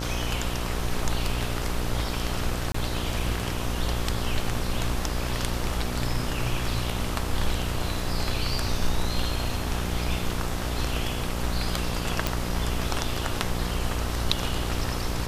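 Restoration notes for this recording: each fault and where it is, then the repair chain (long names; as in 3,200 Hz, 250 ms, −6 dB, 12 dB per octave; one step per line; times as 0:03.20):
mains buzz 60 Hz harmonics 22 −31 dBFS
0:02.72–0:02.74: drop-out 24 ms
0:12.27: click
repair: click removal
hum removal 60 Hz, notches 22
repair the gap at 0:02.72, 24 ms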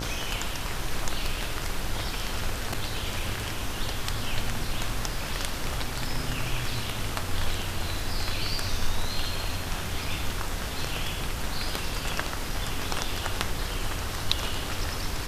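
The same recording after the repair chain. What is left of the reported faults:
none of them is left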